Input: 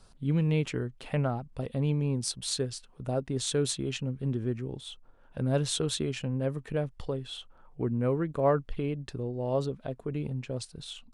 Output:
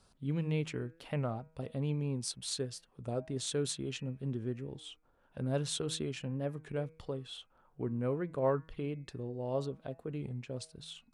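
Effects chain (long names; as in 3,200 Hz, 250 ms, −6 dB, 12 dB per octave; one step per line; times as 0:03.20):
high-pass filter 65 Hz 6 dB per octave
hum removal 159.5 Hz, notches 16
wow of a warped record 33 1/3 rpm, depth 100 cents
level −5.5 dB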